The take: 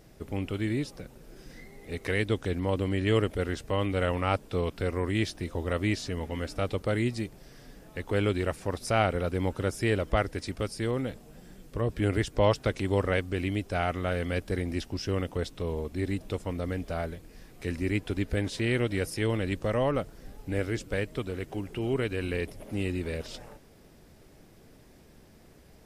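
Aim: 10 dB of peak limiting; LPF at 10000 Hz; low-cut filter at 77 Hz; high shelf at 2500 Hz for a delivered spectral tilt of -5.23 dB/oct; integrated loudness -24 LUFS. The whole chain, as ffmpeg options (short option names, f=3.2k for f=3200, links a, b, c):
-af "highpass=77,lowpass=10k,highshelf=f=2.5k:g=6.5,volume=8dB,alimiter=limit=-9dB:level=0:latency=1"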